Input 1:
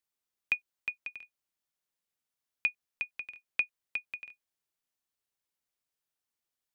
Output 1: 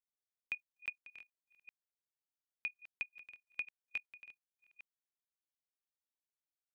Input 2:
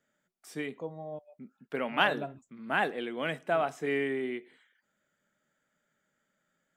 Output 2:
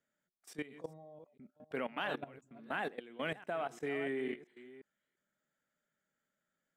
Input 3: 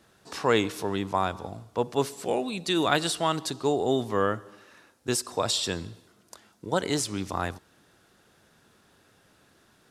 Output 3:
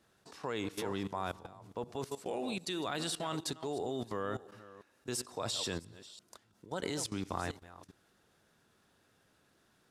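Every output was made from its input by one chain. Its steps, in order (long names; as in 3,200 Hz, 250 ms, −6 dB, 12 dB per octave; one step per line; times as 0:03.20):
delay that plays each chunk backwards 344 ms, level −13 dB
output level in coarse steps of 17 dB
level −2.5 dB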